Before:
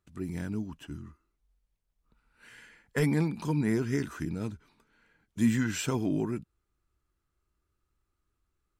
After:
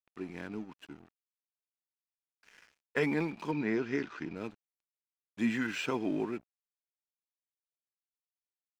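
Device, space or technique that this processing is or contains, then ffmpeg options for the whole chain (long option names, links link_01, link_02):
pocket radio on a weak battery: -filter_complex "[0:a]highpass=300,lowpass=3700,aeval=exprs='sgn(val(0))*max(abs(val(0))-0.00224,0)':channel_layout=same,equalizer=frequency=2500:width_type=o:width=0.22:gain=6,asettb=1/sr,asplit=3[link_01][link_02][link_03];[link_01]atrim=end=3.514[link_04];[link_02]atrim=start=3.51:end=4.36,asetpts=PTS-STARTPTS,afade=type=in:duration=0.004:curve=qsin,afade=type=out:start_time=0.846:duration=0.004:curve=qsin,lowpass=frequency=6200:width=0.5412,lowpass=frequency=6200:width=1.3066[link_05];[link_03]atrim=start=4.356[link_06];[link_04][link_05]acrossfade=duration=0.004:curve1=hsin:curve2=qsin[link_07];[link_07][link_06]acrossfade=duration=0.004:curve1=qsin:curve2=hsin,volume=1dB"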